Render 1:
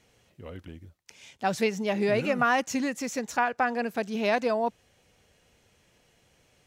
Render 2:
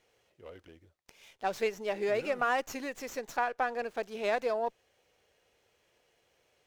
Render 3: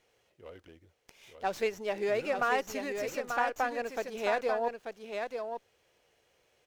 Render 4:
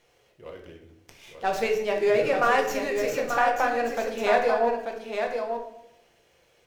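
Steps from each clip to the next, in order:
resonant low shelf 300 Hz -8.5 dB, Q 1.5; running maximum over 3 samples; gain -6 dB
echo 0.888 s -6 dB
shoebox room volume 210 m³, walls mixed, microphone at 0.81 m; gain +5 dB

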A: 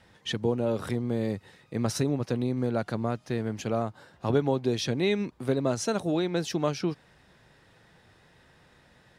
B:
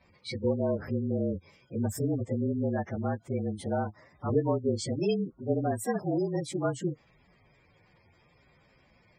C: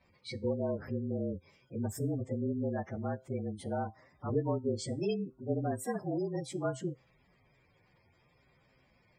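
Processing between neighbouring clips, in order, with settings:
inharmonic rescaling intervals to 111%; spectral gate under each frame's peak -20 dB strong
resonator 130 Hz, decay 0.3 s, harmonics all, mix 40%; gain -1.5 dB

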